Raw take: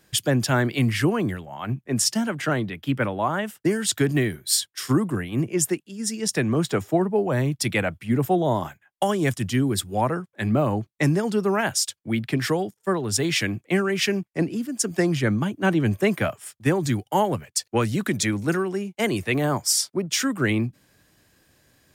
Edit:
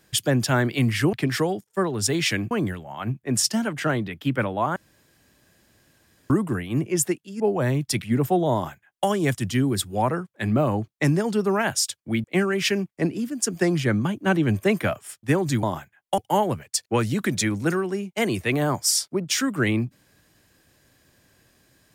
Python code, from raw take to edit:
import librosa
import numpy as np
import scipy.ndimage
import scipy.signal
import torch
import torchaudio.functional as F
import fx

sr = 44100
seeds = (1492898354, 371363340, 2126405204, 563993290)

y = fx.edit(x, sr, fx.room_tone_fill(start_s=3.38, length_s=1.54),
    fx.cut(start_s=6.02, length_s=1.09),
    fx.cut(start_s=7.73, length_s=0.28),
    fx.duplicate(start_s=8.52, length_s=0.55, to_s=17.0),
    fx.move(start_s=12.23, length_s=1.38, to_s=1.13), tone=tone)